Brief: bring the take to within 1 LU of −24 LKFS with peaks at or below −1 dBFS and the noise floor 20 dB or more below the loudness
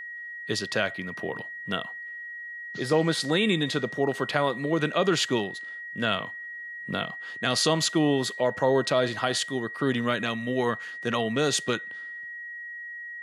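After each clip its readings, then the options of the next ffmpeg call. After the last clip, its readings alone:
interfering tone 1,900 Hz; level of the tone −36 dBFS; integrated loudness −27.5 LKFS; sample peak −7.0 dBFS; target loudness −24.0 LKFS
→ -af "bandreject=frequency=1900:width=30"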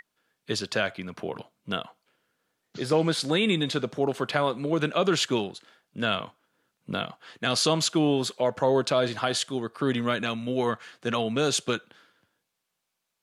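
interfering tone none found; integrated loudness −27.0 LKFS; sample peak −7.0 dBFS; target loudness −24.0 LKFS
→ -af "volume=3dB"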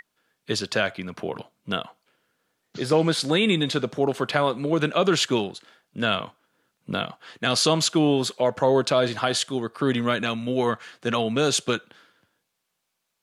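integrated loudness −24.0 LKFS; sample peak −4.0 dBFS; background noise floor −78 dBFS

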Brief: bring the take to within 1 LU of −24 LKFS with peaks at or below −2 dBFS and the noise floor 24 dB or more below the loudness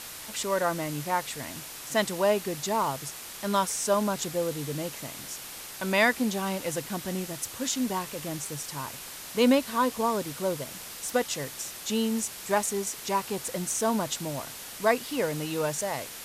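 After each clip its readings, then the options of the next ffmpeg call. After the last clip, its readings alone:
background noise floor −42 dBFS; target noise floor −53 dBFS; integrated loudness −29.0 LKFS; sample peak −10.0 dBFS; target loudness −24.0 LKFS
→ -af "afftdn=noise_reduction=11:noise_floor=-42"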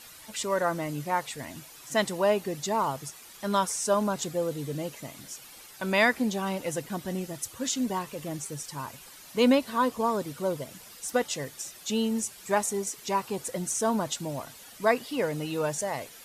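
background noise floor −49 dBFS; target noise floor −53 dBFS
→ -af "afftdn=noise_reduction=6:noise_floor=-49"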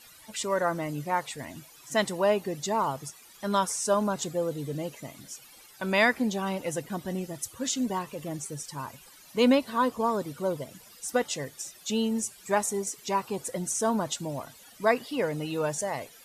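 background noise floor −53 dBFS; target noise floor −54 dBFS
→ -af "afftdn=noise_reduction=6:noise_floor=-53"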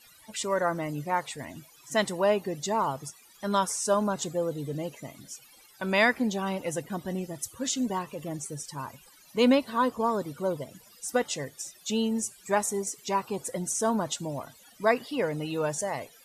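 background noise floor −56 dBFS; integrated loudness −29.5 LKFS; sample peak −10.5 dBFS; target loudness −24.0 LKFS
→ -af "volume=5.5dB"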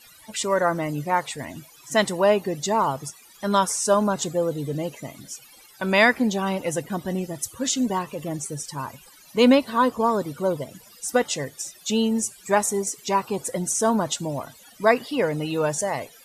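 integrated loudness −24.0 LKFS; sample peak −5.0 dBFS; background noise floor −51 dBFS

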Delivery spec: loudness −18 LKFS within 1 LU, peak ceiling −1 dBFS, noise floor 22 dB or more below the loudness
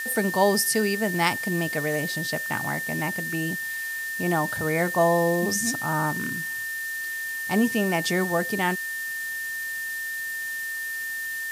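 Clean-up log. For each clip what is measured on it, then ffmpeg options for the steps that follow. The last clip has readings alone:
interfering tone 1,800 Hz; level of the tone −29 dBFS; background noise floor −31 dBFS; target noise floor −48 dBFS; integrated loudness −25.5 LKFS; sample peak −5.0 dBFS; target loudness −18.0 LKFS
→ -af "bandreject=frequency=1800:width=30"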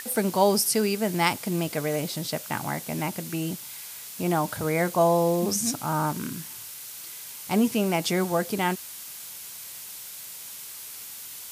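interfering tone none found; background noise floor −41 dBFS; target noise floor −50 dBFS
→ -af "afftdn=noise_reduction=9:noise_floor=-41"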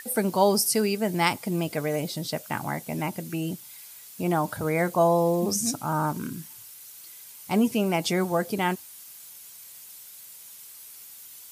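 background noise floor −46 dBFS; target noise floor −48 dBFS
→ -af "afftdn=noise_reduction=6:noise_floor=-46"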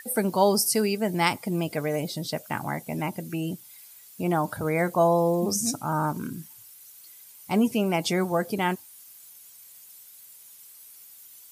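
background noise floor −50 dBFS; integrated loudness −26.0 LKFS; sample peak −6.0 dBFS; target loudness −18.0 LKFS
→ -af "volume=8dB,alimiter=limit=-1dB:level=0:latency=1"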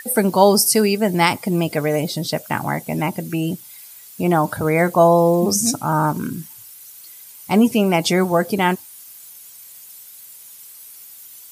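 integrated loudness −18.0 LKFS; sample peak −1.0 dBFS; background noise floor −42 dBFS

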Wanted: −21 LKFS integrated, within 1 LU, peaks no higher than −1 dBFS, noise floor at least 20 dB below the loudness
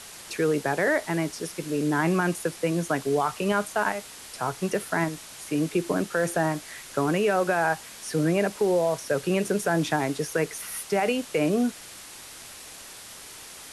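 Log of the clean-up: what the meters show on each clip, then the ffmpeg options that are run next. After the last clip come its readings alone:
background noise floor −44 dBFS; target noise floor −47 dBFS; integrated loudness −26.5 LKFS; sample peak −11.5 dBFS; target loudness −21.0 LKFS
→ -af "afftdn=noise_reduction=6:noise_floor=-44"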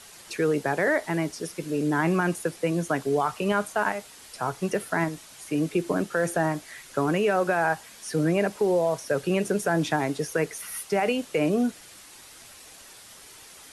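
background noise floor −48 dBFS; integrated loudness −26.5 LKFS; sample peak −11.5 dBFS; target loudness −21.0 LKFS
→ -af "volume=5.5dB"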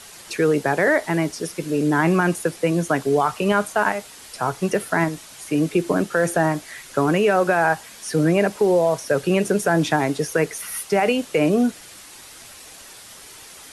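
integrated loudness −21.0 LKFS; sample peak −6.0 dBFS; background noise floor −43 dBFS

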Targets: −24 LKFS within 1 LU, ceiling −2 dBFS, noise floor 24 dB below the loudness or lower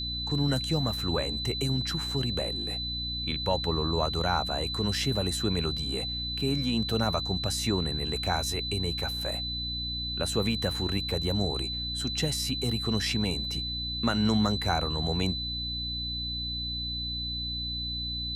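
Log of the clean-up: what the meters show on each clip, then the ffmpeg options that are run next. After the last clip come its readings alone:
mains hum 60 Hz; hum harmonics up to 300 Hz; level of the hum −36 dBFS; interfering tone 4,000 Hz; level of the tone −32 dBFS; integrated loudness −29.0 LKFS; sample peak −12.5 dBFS; target loudness −24.0 LKFS
→ -af "bandreject=frequency=60:width_type=h:width=6,bandreject=frequency=120:width_type=h:width=6,bandreject=frequency=180:width_type=h:width=6,bandreject=frequency=240:width_type=h:width=6,bandreject=frequency=300:width_type=h:width=6"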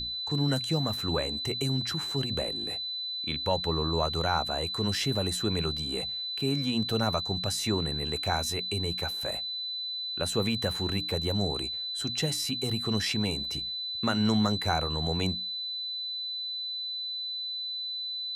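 mains hum none found; interfering tone 4,000 Hz; level of the tone −32 dBFS
→ -af "bandreject=frequency=4000:width=30"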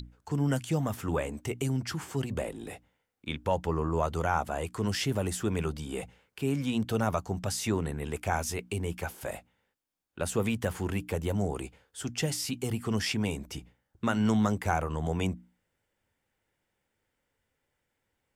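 interfering tone none found; integrated loudness −31.5 LKFS; sample peak −13.0 dBFS; target loudness −24.0 LKFS
→ -af "volume=7.5dB"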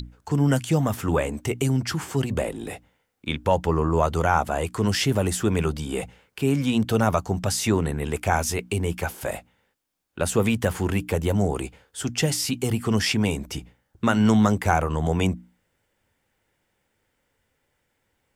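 integrated loudness −24.0 LKFS; sample peak −5.5 dBFS; background noise floor −74 dBFS

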